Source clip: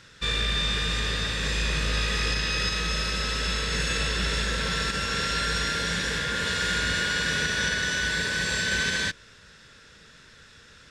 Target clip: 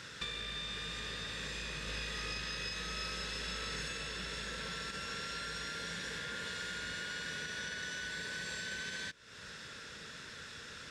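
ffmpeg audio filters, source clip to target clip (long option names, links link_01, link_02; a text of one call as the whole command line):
ffmpeg -i in.wav -filter_complex "[0:a]highpass=frequency=130:poles=1,acompressor=threshold=-43dB:ratio=8,asettb=1/sr,asplit=3[link_01][link_02][link_03];[link_01]atrim=end=1.834[link_04];[link_02]atrim=start=1.83:end=3.88,asetpts=PTS-STARTPTS,afade=type=in:duration=0.004:curve=qsin,afade=type=out:start_time=2.046:duration=0.004:curve=qsin,asplit=2[link_05][link_06];[link_06]adelay=39,volume=-4.5dB[link_07];[link_05][link_07]amix=inputs=2:normalize=0,atrim=end_sample=90405[link_08];[link_03]atrim=start=3.876[link_09];[link_04][link_08]acrossfade=duration=0.004:curve1=hsin:curve2=qsin[link_10];[link_10][link_09]acrossfade=duration=0.004:curve1=qsin:curve2=hsin,volume=3.5dB" out.wav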